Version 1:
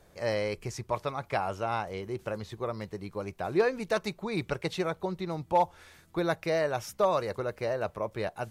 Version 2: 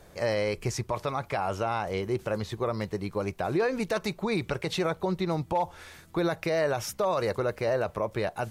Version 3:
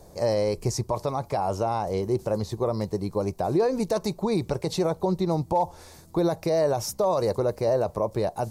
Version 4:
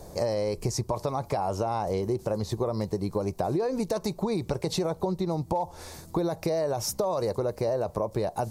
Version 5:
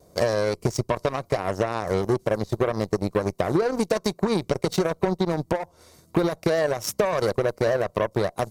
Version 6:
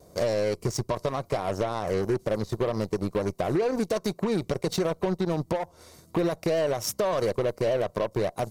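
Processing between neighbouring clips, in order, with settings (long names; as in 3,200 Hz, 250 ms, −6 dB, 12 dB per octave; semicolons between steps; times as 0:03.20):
brickwall limiter −25.5 dBFS, peak gain reduction 10 dB; level +6.5 dB
flat-topped bell 2,100 Hz −12.5 dB; level +4 dB
downward compressor, threshold −30 dBFS, peak gain reduction 11.5 dB; level +5 dB
notch comb filter 840 Hz; harmonic generator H 3 −36 dB, 7 −19 dB, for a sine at −15.5 dBFS; pitch vibrato 0.47 Hz 7.1 cents; level +6.5 dB
soft clipping −20.5 dBFS, distortion −10 dB; level +1.5 dB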